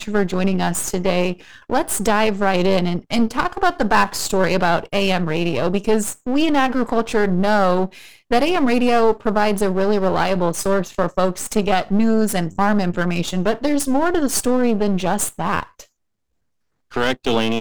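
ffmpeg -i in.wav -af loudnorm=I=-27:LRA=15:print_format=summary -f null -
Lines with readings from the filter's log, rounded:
Input Integrated:    -19.3 LUFS
Input True Peak:      -2.5 dBTP
Input LRA:             3.9 LU
Input Threshold:     -29.5 LUFS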